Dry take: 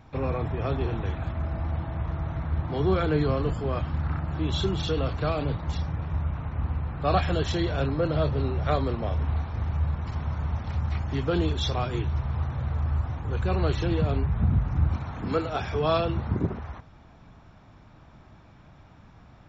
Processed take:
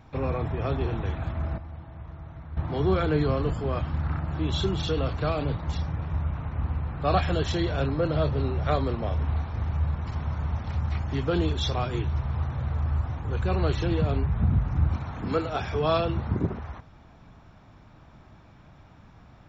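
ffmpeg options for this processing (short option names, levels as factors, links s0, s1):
-filter_complex "[0:a]asplit=3[s0][s1][s2];[s0]atrim=end=1.582[s3];[s1]atrim=start=1.578:end=2.572,asetpts=PTS-STARTPTS,volume=0.282[s4];[s2]atrim=start=2.568[s5];[s3][s4]acrossfade=d=0.004:c1=hsin:c2=hsin[s6];[s6][s5]acrossfade=d=0.004:c1=hsin:c2=hsin"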